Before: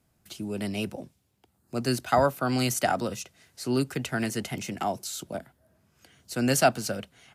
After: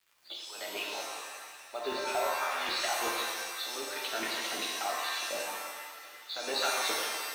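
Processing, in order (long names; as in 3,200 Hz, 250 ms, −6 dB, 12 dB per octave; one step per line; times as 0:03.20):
hearing-aid frequency compression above 3,300 Hz 4 to 1
flanger 1 Hz, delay 2.4 ms, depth 1.7 ms, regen −48%
surface crackle 340 per second −53 dBFS
auto-filter high-pass saw down 2.6 Hz 360–1,700 Hz
downward compressor 2 to 1, threshold −39 dBFS, peak gain reduction 13 dB
harmonic and percussive parts rebalanced harmonic −17 dB
feedback echo with a band-pass in the loop 363 ms, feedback 73%, band-pass 1,800 Hz, level −10.5 dB
dynamic equaliser 2,900 Hz, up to +3 dB, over −52 dBFS, Q 0.85
log-companded quantiser 6 bits
buffer that repeats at 0:02.08, samples 512, times 5
reverb with rising layers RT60 1.3 s, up +7 semitones, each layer −2 dB, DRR −2 dB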